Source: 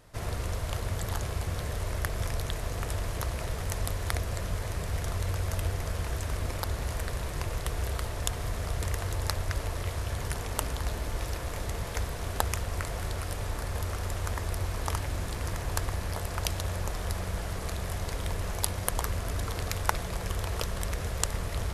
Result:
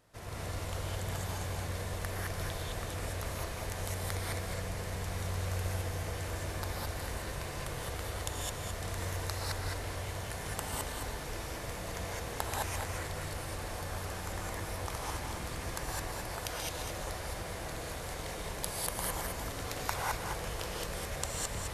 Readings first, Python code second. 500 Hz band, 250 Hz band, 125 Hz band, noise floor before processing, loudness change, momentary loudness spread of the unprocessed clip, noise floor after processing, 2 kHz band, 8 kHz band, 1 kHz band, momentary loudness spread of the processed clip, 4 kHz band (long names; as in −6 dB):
−2.5 dB, −3.5 dB, −6.5 dB, −36 dBFS, −4.5 dB, 3 LU, −41 dBFS, −2.0 dB, −2.5 dB, −2.0 dB, 4 LU, −2.0 dB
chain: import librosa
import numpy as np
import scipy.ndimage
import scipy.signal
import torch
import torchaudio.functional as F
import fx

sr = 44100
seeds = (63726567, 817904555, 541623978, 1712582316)

y = fx.low_shelf(x, sr, hz=79.0, db=-9.5)
y = y + 10.0 ** (-6.0 / 20.0) * np.pad(y, (int(217 * sr / 1000.0), 0))[:len(y)]
y = fx.rev_gated(y, sr, seeds[0], gate_ms=230, shape='rising', drr_db=-4.0)
y = F.gain(torch.from_numpy(y), -8.5).numpy()